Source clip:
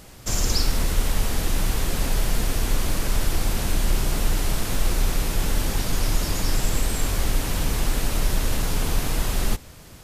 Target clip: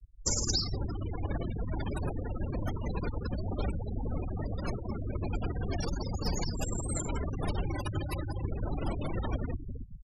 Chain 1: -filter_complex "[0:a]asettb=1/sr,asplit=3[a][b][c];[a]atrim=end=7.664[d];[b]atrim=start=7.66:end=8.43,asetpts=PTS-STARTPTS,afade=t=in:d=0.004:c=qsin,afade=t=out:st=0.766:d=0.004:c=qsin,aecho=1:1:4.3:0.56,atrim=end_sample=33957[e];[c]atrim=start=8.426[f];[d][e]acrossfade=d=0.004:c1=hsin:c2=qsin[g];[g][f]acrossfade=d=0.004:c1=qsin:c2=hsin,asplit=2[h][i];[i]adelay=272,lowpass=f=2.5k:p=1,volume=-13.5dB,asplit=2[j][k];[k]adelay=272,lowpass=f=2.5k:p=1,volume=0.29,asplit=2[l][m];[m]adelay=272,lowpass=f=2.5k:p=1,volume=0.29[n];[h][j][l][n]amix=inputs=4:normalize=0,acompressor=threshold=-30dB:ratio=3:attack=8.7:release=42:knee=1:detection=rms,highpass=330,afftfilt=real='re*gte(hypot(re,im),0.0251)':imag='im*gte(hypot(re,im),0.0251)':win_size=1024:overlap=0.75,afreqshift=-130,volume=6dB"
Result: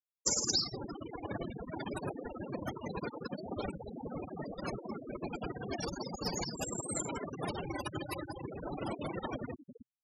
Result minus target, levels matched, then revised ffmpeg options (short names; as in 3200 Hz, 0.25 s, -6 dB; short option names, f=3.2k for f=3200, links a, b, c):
125 Hz band -8.0 dB
-filter_complex "[0:a]asettb=1/sr,asplit=3[a][b][c];[a]atrim=end=7.664[d];[b]atrim=start=7.66:end=8.43,asetpts=PTS-STARTPTS,afade=t=in:d=0.004:c=qsin,afade=t=out:st=0.766:d=0.004:c=qsin,aecho=1:1:4.3:0.56,atrim=end_sample=33957[e];[c]atrim=start=8.426[f];[d][e]acrossfade=d=0.004:c1=hsin:c2=qsin[g];[g][f]acrossfade=d=0.004:c1=qsin:c2=hsin,asplit=2[h][i];[i]adelay=272,lowpass=f=2.5k:p=1,volume=-13.5dB,asplit=2[j][k];[k]adelay=272,lowpass=f=2.5k:p=1,volume=0.29,asplit=2[l][m];[m]adelay=272,lowpass=f=2.5k:p=1,volume=0.29[n];[h][j][l][n]amix=inputs=4:normalize=0,acompressor=threshold=-30dB:ratio=3:attack=8.7:release=42:knee=1:detection=rms,highpass=84,afftfilt=real='re*gte(hypot(re,im),0.0251)':imag='im*gte(hypot(re,im),0.0251)':win_size=1024:overlap=0.75,afreqshift=-130,volume=6dB"